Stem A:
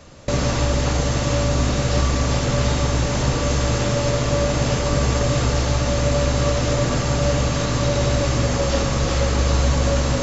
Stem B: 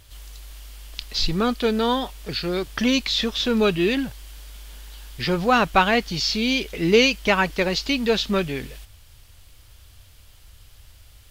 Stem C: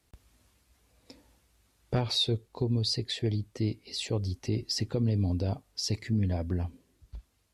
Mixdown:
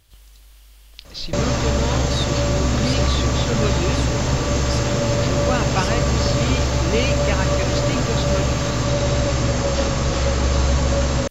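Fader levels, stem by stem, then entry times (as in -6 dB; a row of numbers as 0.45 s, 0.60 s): 0.0 dB, -7.0 dB, -1.0 dB; 1.05 s, 0.00 s, 0.00 s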